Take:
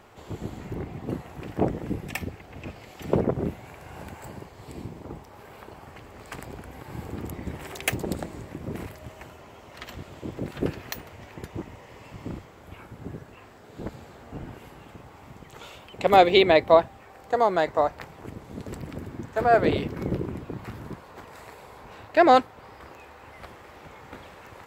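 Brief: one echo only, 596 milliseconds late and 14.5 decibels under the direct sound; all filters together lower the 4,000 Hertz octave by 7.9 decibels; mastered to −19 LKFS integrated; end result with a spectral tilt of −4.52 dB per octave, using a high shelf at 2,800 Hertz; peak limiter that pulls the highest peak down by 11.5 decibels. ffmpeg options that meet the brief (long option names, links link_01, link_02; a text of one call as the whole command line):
ffmpeg -i in.wav -af "highshelf=frequency=2800:gain=-6.5,equalizer=frequency=4000:width_type=o:gain=-5,alimiter=limit=-16.5dB:level=0:latency=1,aecho=1:1:596:0.188,volume=14dB" out.wav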